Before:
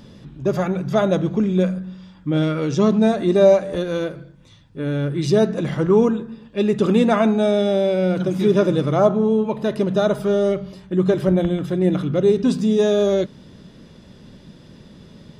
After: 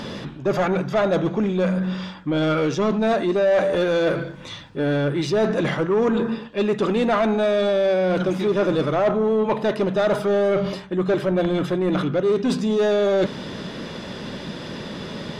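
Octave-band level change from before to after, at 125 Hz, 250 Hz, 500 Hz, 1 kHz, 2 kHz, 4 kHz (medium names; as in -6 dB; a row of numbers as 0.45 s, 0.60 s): -4.0 dB, -3.5 dB, -1.5 dB, +1.0 dB, +4.0 dB, +1.5 dB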